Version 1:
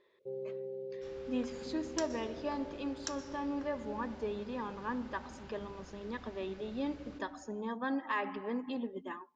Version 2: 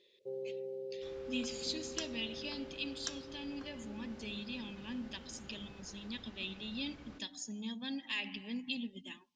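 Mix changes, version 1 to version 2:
speech: add EQ curve 220 Hz 0 dB, 410 Hz -16 dB, 790 Hz -14 dB, 1300 Hz -22 dB, 2700 Hz +12 dB; first sound: add tone controls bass -6 dB, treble +10 dB; reverb: off

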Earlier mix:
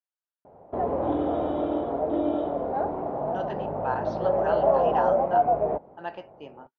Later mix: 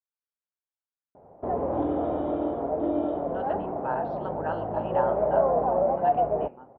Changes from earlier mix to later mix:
background: entry +0.70 s; master: add air absorption 380 m

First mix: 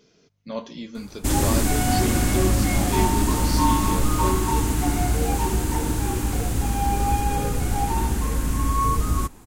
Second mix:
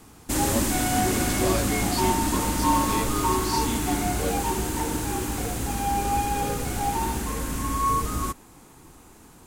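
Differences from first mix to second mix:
first sound: entry -0.95 s; master: add low shelf 140 Hz -10 dB

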